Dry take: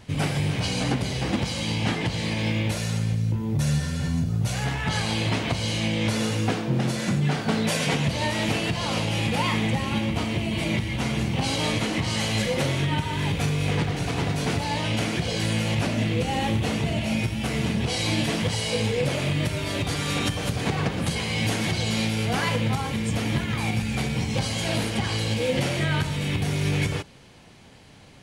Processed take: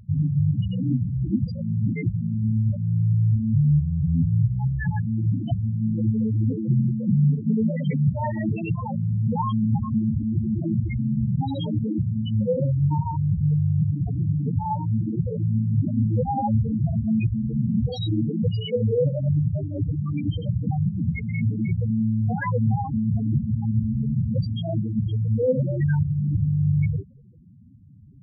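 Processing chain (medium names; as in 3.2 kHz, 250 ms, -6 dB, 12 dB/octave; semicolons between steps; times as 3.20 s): loudest bins only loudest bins 4; trim +5.5 dB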